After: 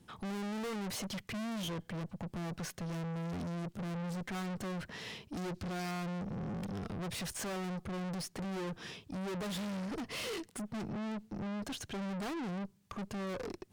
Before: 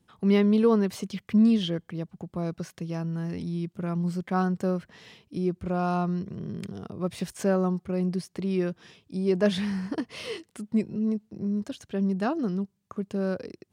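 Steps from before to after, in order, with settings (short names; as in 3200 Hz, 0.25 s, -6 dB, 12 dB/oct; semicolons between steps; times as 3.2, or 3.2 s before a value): 5.37–5.91 bell 4700 Hz +12.5 dB 1.2 oct; tube stage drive 45 dB, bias 0.35; gain +7.5 dB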